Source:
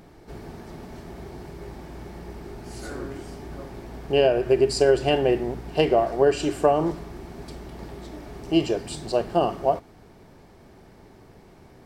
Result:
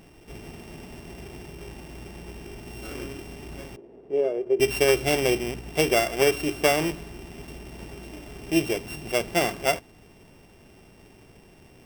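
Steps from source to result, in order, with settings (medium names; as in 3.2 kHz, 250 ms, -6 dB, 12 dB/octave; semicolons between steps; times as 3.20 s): sorted samples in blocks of 16 samples; 3.76–4.60 s: band-pass filter 420 Hz, Q 2.3; trim -2 dB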